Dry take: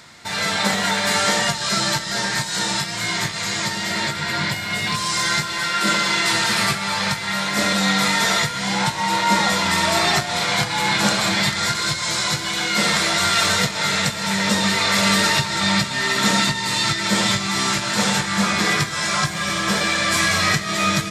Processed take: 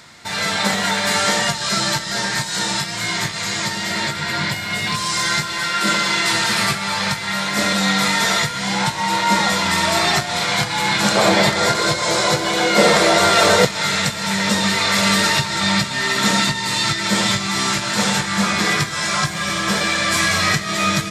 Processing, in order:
0:11.15–0:13.65: parametric band 510 Hz +14.5 dB 1.6 octaves
level +1 dB

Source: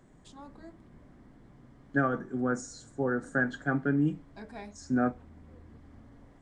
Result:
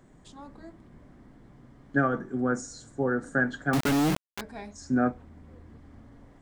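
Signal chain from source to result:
0:03.73–0:04.41: log-companded quantiser 2 bits
level +2.5 dB

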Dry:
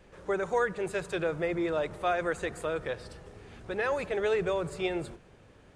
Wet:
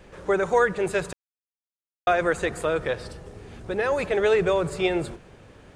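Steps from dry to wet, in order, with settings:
0:01.13–0:02.07: silence
0:03.11–0:03.98: parametric band 2,000 Hz −4.5 dB 2.9 octaves
level +7.5 dB

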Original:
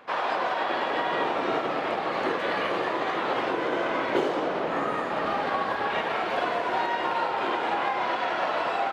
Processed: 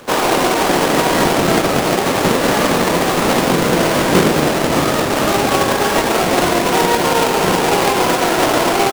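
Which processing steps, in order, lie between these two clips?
each half-wave held at its own peak
hum removal 206.5 Hz, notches 5
pitch-shifted copies added −12 semitones −1 dB
level +6.5 dB

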